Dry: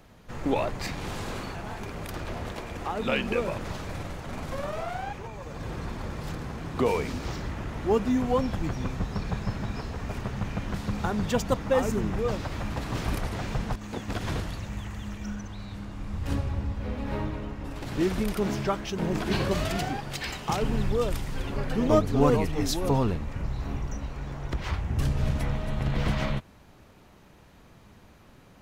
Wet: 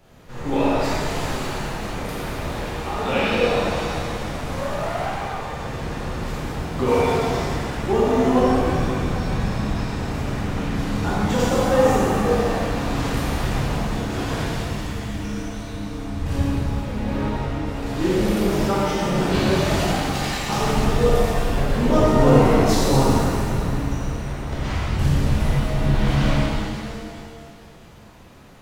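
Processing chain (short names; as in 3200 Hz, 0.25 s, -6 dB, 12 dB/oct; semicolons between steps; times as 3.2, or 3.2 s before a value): shimmer reverb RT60 2.3 s, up +7 st, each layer -8 dB, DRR -9.5 dB; gain -3 dB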